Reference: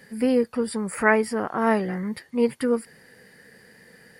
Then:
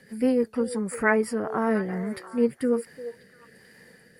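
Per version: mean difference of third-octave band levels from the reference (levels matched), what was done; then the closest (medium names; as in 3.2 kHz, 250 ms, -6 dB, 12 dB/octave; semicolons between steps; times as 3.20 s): 2.5 dB: dynamic bell 3.5 kHz, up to -6 dB, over -45 dBFS, Q 1.2; rotary cabinet horn 6.3 Hz, later 1.2 Hz, at 0.92 s; on a send: repeats whose band climbs or falls 346 ms, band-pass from 500 Hz, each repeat 1.4 oct, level -10.5 dB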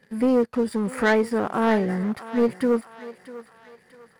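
5.0 dB: treble shelf 2.9 kHz -10 dB; waveshaping leveller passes 2; on a send: thinning echo 646 ms, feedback 48%, high-pass 610 Hz, level -12.5 dB; on the sum: trim -4 dB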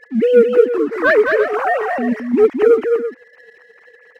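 9.5 dB: formants replaced by sine waves; waveshaping leveller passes 1; on a send: multi-tap echo 215/335 ms -4.5/-11.5 dB; on the sum: trim +5.5 dB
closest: first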